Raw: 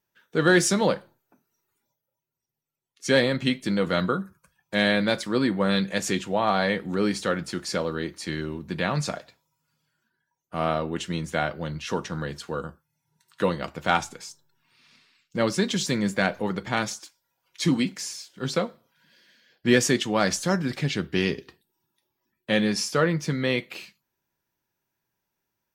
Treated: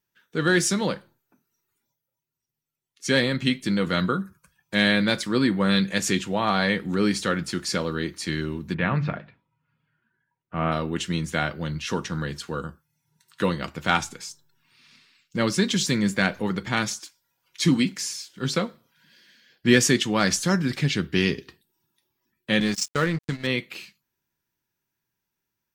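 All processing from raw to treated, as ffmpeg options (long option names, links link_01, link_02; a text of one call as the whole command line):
ffmpeg -i in.wav -filter_complex "[0:a]asettb=1/sr,asplit=3[link_01][link_02][link_03];[link_01]atrim=end=8.744[link_04];[link_02]atrim=start=8.74:end=10.72,asetpts=PTS-STARTPTS,afade=type=in:duration=0.004:curve=qsin,afade=type=out:start_time=1.976:duration=0.004:curve=qsin,lowpass=frequency=2600:width=0.5412,lowpass=frequency=2600:width=1.3066,equalizer=frequency=120:width_type=o:width=0.76:gain=4.5,bandreject=frequency=50:width_type=h:width=6,bandreject=frequency=100:width_type=h:width=6,bandreject=frequency=150:width_type=h:width=6,bandreject=frequency=200:width_type=h:width=6,bandreject=frequency=250:width_type=h:width=6,bandreject=frequency=300:width_type=h:width=6,bandreject=frequency=350:width_type=h:width=6,bandreject=frequency=400:width_type=h:width=6[link_05];[link_03]atrim=start=10.716[link_06];[link_04][link_05]acrossfade=duration=0.004:curve1=hsin:curve2=qsin[link_07];[link_07][link_06]acrossfade=duration=0.004:curve1=qsin:curve2=hsin,asettb=1/sr,asplit=3[link_08][link_09][link_10];[link_08]atrim=end=22.604[link_11];[link_09]atrim=start=22.6:end=23.47,asetpts=PTS-STARTPTS,afade=type=in:duration=0.004:curve=qsin,afade=type=out:start_time=0.866:duration=0.004:curve=qsin,agate=range=-15dB:threshold=-28dB:ratio=16:release=100:detection=peak,lowpass=frequency=7600:width_type=q:width=3.3,aeval=exprs='sgn(val(0))*max(abs(val(0))-0.0168,0)':channel_layout=same[link_12];[link_10]atrim=start=23.466[link_13];[link_11][link_12]acrossfade=duration=0.004:curve1=hsin:curve2=qsin[link_14];[link_14][link_13]acrossfade=duration=0.004:curve1=qsin:curve2=hsin,dynaudnorm=framelen=740:gausssize=9:maxgain=5dB,equalizer=frequency=650:width_type=o:width=1.3:gain=-7" out.wav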